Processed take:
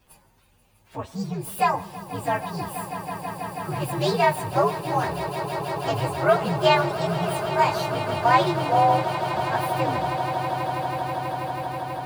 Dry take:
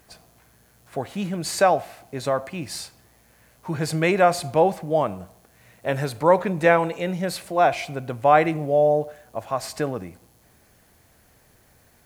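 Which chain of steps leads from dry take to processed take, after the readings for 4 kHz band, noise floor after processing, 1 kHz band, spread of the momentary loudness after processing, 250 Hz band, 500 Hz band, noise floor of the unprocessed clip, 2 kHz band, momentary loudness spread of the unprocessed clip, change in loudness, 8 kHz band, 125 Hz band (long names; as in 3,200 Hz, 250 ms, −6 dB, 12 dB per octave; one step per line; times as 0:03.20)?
+3.5 dB, −60 dBFS, +2.0 dB, 12 LU, −2.0 dB, −3.0 dB, −58 dBFS, −0.5 dB, 15 LU, −2.0 dB, −4.0 dB, +2.0 dB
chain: partials spread apart or drawn together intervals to 127%
echo that builds up and dies away 162 ms, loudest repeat 8, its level −14 dB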